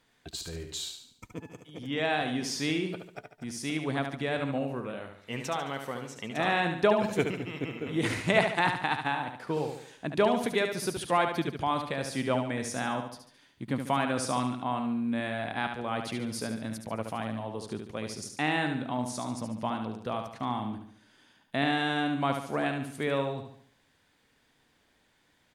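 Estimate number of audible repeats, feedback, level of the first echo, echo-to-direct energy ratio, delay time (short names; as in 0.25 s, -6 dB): 4, 44%, -6.5 dB, -5.5 dB, 72 ms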